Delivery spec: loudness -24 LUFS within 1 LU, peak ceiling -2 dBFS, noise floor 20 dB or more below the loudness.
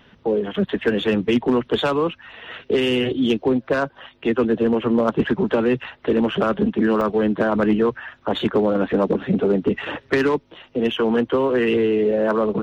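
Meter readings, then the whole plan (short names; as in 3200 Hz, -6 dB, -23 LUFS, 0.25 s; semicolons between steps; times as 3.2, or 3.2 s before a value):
clipped 0.3%; flat tops at -10.5 dBFS; dropouts 1; longest dropout 1.6 ms; loudness -20.5 LUFS; peak -10.5 dBFS; loudness target -24.0 LUFS
-> clip repair -10.5 dBFS; interpolate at 7.01, 1.6 ms; gain -3.5 dB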